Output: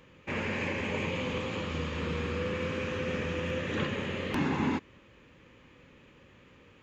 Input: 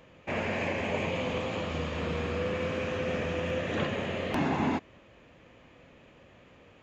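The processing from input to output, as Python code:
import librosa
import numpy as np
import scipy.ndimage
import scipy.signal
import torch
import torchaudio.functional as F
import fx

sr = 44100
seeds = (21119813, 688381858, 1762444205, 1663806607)

y = fx.peak_eq(x, sr, hz=680.0, db=-14.0, octaves=0.36)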